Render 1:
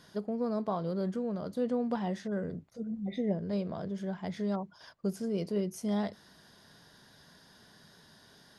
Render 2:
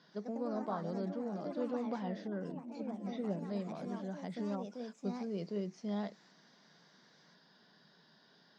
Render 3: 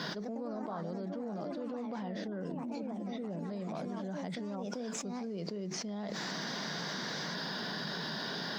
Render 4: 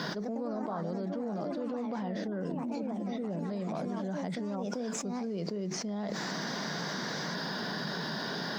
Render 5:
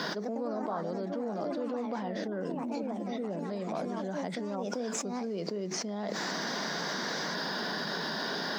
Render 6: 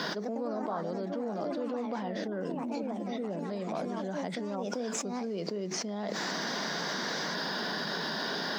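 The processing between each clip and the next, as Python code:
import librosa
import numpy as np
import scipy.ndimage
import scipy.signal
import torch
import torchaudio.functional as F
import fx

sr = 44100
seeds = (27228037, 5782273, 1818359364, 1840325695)

y1 = scipy.signal.sosfilt(scipy.signal.ellip(3, 1.0, 40, [160.0, 5000.0], 'bandpass', fs=sr, output='sos'), x)
y1 = fx.echo_pitch(y1, sr, ms=121, semitones=3, count=3, db_per_echo=-6.0)
y1 = y1 * 10.0 ** (-6.0 / 20.0)
y2 = fx.env_flatten(y1, sr, amount_pct=100)
y2 = y2 * 10.0 ** (-5.5 / 20.0)
y3 = fx.dynamic_eq(y2, sr, hz=3300.0, q=1.0, threshold_db=-54.0, ratio=4.0, max_db=-5)
y3 = y3 * 10.0 ** (4.0 / 20.0)
y4 = scipy.signal.sosfilt(scipy.signal.butter(2, 240.0, 'highpass', fs=sr, output='sos'), y3)
y4 = y4 * 10.0 ** (2.5 / 20.0)
y5 = fx.peak_eq(y4, sr, hz=3000.0, db=2.0, octaves=0.77)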